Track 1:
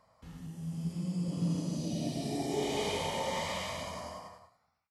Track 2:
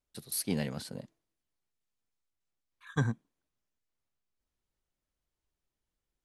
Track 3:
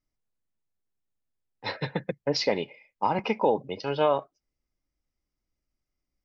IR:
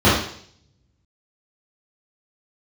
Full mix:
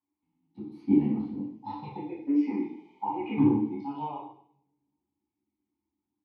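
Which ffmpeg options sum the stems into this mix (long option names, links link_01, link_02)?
-filter_complex "[0:a]volume=-15.5dB[link_01];[1:a]lowpass=frequency=1100:poles=1,adelay=400,volume=0dB,asplit=2[link_02][link_03];[link_03]volume=-10.5dB[link_04];[2:a]acompressor=threshold=-24dB:ratio=6,asplit=2[link_05][link_06];[link_06]afreqshift=-0.91[link_07];[link_05][link_07]amix=inputs=2:normalize=1,volume=-9.5dB,asplit=2[link_08][link_09];[link_09]volume=-6dB[link_10];[3:a]atrim=start_sample=2205[link_11];[link_04][link_10]amix=inputs=2:normalize=0[link_12];[link_12][link_11]afir=irnorm=-1:irlink=0[link_13];[link_01][link_02][link_08][link_13]amix=inputs=4:normalize=0,asplit=3[link_14][link_15][link_16];[link_14]bandpass=frequency=300:width_type=q:width=8,volume=0dB[link_17];[link_15]bandpass=frequency=870:width_type=q:width=8,volume=-6dB[link_18];[link_16]bandpass=frequency=2240:width_type=q:width=8,volume=-9dB[link_19];[link_17][link_18][link_19]amix=inputs=3:normalize=0"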